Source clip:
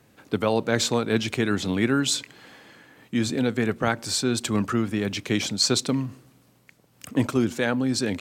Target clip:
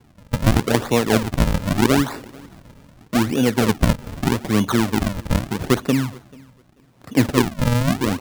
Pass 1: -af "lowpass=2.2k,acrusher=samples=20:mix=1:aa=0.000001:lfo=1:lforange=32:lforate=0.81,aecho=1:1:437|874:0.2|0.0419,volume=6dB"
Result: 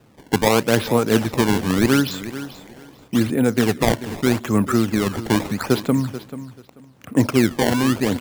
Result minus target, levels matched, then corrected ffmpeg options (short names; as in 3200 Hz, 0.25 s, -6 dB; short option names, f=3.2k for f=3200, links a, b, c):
echo-to-direct +11.5 dB; decimation with a swept rate: distortion -10 dB
-af "lowpass=2.2k,acrusher=samples=68:mix=1:aa=0.000001:lfo=1:lforange=109:lforate=0.81,aecho=1:1:437|874:0.0531|0.0111,volume=6dB"